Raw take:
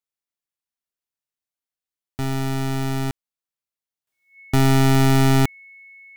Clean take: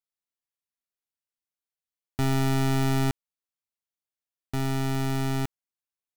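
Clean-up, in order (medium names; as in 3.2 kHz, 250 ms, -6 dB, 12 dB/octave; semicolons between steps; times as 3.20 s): band-stop 2.2 kHz, Q 30; trim 0 dB, from 4.07 s -11.5 dB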